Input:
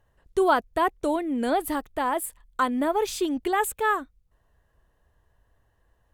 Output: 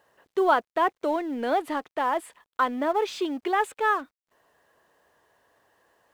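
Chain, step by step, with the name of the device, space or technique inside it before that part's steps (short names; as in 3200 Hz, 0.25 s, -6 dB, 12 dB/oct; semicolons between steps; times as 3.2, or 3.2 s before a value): phone line with mismatched companding (BPF 340–3600 Hz; G.711 law mismatch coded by mu)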